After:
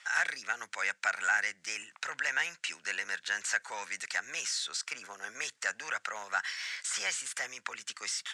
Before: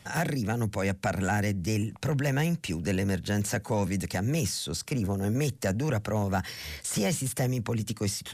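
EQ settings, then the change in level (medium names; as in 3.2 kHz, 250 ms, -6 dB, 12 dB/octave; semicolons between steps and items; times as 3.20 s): resonant high-pass 1.5 kHz, resonance Q 2.1; Chebyshev low-pass 7.6 kHz, order 3; 0.0 dB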